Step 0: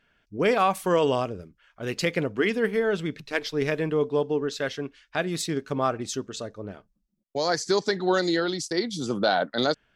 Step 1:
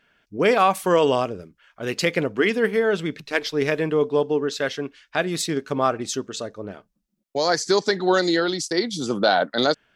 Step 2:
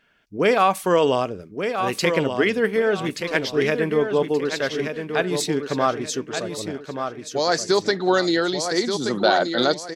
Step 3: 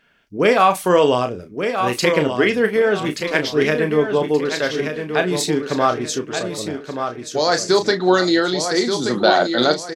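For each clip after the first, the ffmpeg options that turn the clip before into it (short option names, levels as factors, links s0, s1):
-af "lowshelf=f=100:g=-11,volume=1.68"
-af "aecho=1:1:1178|2356|3534|4712:0.447|0.143|0.0457|0.0146"
-filter_complex "[0:a]asplit=2[s0][s1];[s1]adelay=33,volume=0.376[s2];[s0][s2]amix=inputs=2:normalize=0,volume=1.41"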